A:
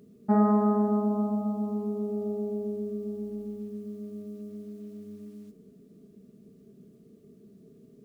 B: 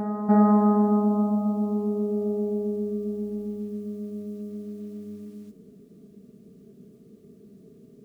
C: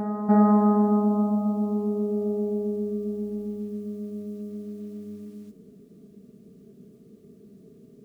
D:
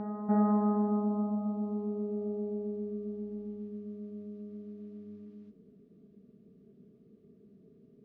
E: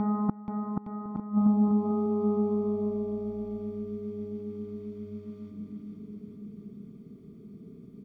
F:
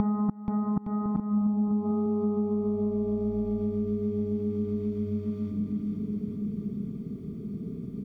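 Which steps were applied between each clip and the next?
reverse echo 304 ms -11.5 dB; trim +3.5 dB
no audible change
distance through air 240 m; trim -8 dB
comb 0.9 ms, depth 65%; inverted gate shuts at -22 dBFS, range -29 dB; bouncing-ball echo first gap 480 ms, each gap 0.8×, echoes 5; trim +7.5 dB
bass shelf 210 Hz +8.5 dB; compression 6:1, threshold -32 dBFS, peak gain reduction 16 dB; trim +7 dB

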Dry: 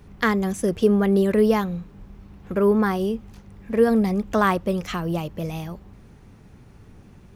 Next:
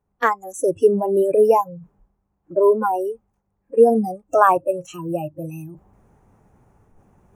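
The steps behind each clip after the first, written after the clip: spectral noise reduction 30 dB; FFT filter 270 Hz 0 dB, 820 Hz +10 dB, 4.4 kHz -12 dB, 6.6 kHz +2 dB; reverse; upward compressor, threshold -39 dBFS; reverse; trim +1 dB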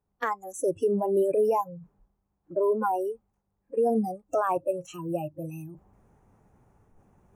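peak limiter -11.5 dBFS, peak gain reduction 10.5 dB; trim -5.5 dB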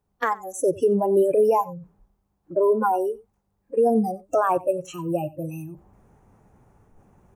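delay 91 ms -20.5 dB; trim +5 dB

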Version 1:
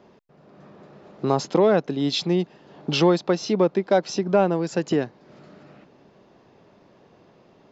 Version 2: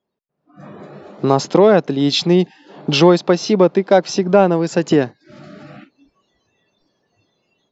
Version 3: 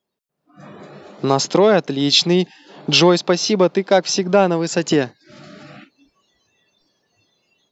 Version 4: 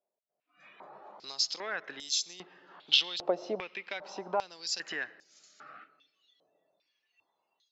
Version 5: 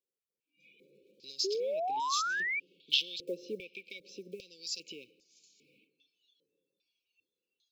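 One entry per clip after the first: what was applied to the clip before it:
spectral noise reduction 26 dB; level rider gain up to 12.5 dB
treble shelf 2.2 kHz +10 dB; trim -3 dB
compression 4:1, threshold -16 dBFS, peak gain reduction 7 dB; algorithmic reverb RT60 2.6 s, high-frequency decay 0.3×, pre-delay 50 ms, DRR 18.5 dB; step-sequenced band-pass 2.5 Hz 650–6700 Hz
block-companded coder 7-bit; brick-wall FIR band-stop 550–2200 Hz; painted sound rise, 1.44–2.60 s, 370–2400 Hz -29 dBFS; trim -4 dB

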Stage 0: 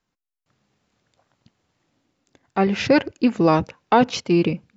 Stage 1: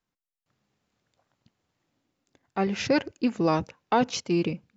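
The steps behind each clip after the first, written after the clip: dynamic bell 6.5 kHz, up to +7 dB, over -48 dBFS, Q 1.5; trim -7 dB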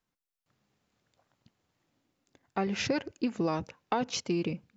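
compression 4:1, threshold -27 dBFS, peak gain reduction 8.5 dB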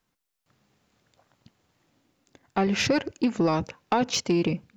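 saturation -22 dBFS, distortion -19 dB; trim +8 dB

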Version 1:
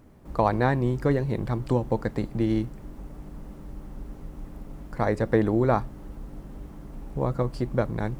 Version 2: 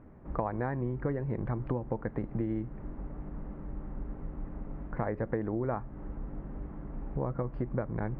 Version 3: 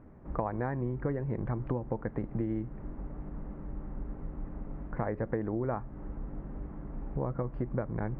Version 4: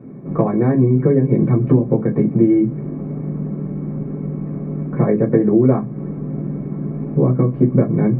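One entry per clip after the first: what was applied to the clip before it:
low-pass 2 kHz 24 dB/octave; compression 6:1, threshold -29 dBFS, peak gain reduction 12.5 dB
distance through air 110 m
reverberation RT60 0.15 s, pre-delay 3 ms, DRR -3.5 dB; trim +2 dB

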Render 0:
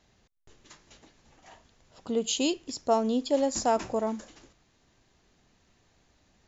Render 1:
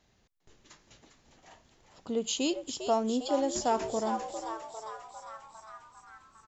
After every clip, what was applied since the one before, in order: frequency-shifting echo 402 ms, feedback 64%, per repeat +110 Hz, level -9 dB; trim -3 dB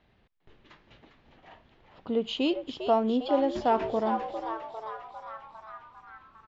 low-pass 3.4 kHz 24 dB/octave; trim +3.5 dB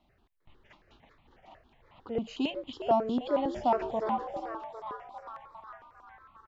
stepped phaser 11 Hz 450–1600 Hz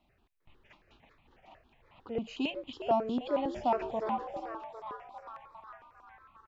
peaking EQ 2.5 kHz +6.5 dB 0.25 oct; trim -2.5 dB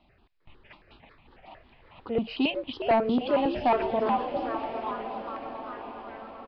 sine folder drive 4 dB, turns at -17 dBFS; echo that smears into a reverb 1011 ms, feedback 50%, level -11 dB; resampled via 11.025 kHz

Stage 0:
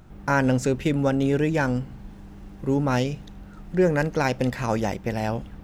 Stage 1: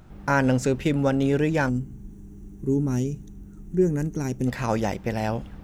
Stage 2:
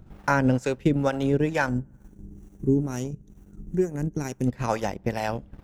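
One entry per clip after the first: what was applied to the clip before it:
time-frequency box 1.69–4.47 s, 440–5600 Hz -15 dB
feedback echo behind a band-pass 65 ms, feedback 61%, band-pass 880 Hz, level -21 dB; transient shaper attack +3 dB, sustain -11 dB; harmonic tremolo 2.2 Hz, depth 70%, crossover 510 Hz; trim +1.5 dB

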